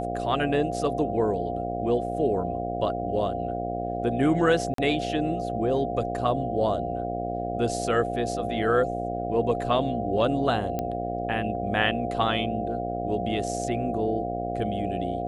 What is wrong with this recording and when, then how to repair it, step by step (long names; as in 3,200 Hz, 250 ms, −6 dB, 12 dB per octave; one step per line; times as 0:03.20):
mains buzz 60 Hz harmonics 13 −32 dBFS
whistle 700 Hz −31 dBFS
0:04.74–0:04.78: drop-out 43 ms
0:10.79: click −16 dBFS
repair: click removal
hum removal 60 Hz, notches 13
notch filter 700 Hz, Q 30
repair the gap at 0:04.74, 43 ms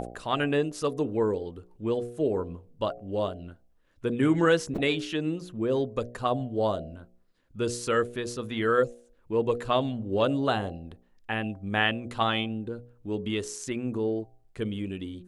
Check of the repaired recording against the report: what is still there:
none of them is left